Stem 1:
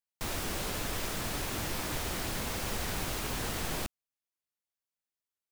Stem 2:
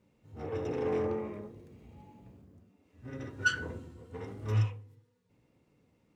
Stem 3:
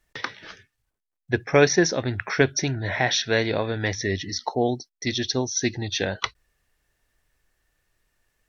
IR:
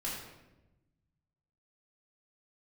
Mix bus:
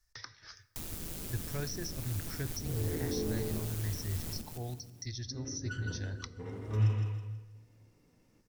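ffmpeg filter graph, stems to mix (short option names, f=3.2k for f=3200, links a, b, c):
-filter_complex "[0:a]crystalizer=i=3:c=0,tremolo=f=160:d=0.667,adelay=550,volume=-2.5dB,asplit=2[a][b];[b]volume=-8dB[c];[1:a]adelay=2250,volume=-1dB,asplit=3[d][e][f];[e]volume=-11.5dB[g];[f]volume=-6.5dB[h];[2:a]firequalizer=gain_entry='entry(110,0);entry(180,-18);entry(1300,-4);entry(3000,-13);entry(5100,8);entry(7400,-1)':delay=0.05:min_phase=1,volume=-4.5dB,asplit=2[i][j];[j]volume=-19dB[k];[3:a]atrim=start_sample=2205[l];[g][k]amix=inputs=2:normalize=0[m];[m][l]afir=irnorm=-1:irlink=0[n];[c][h]amix=inputs=2:normalize=0,aecho=0:1:162|324|486|648|810:1|0.37|0.137|0.0507|0.0187[o];[a][d][i][n][o]amix=inputs=5:normalize=0,acrossover=split=370[p][q];[q]acompressor=threshold=-46dB:ratio=3[r];[p][r]amix=inputs=2:normalize=0"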